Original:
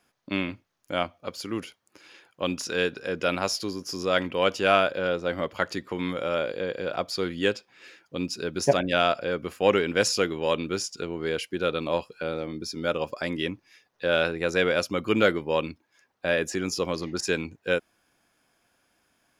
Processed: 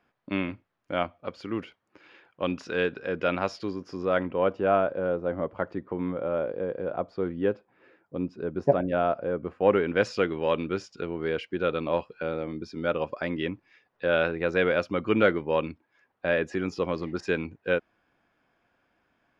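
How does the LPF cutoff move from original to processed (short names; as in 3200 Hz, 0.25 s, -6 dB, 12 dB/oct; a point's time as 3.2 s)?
3.7 s 2400 Hz
4.57 s 1000 Hz
9.42 s 1000 Hz
10.08 s 2400 Hz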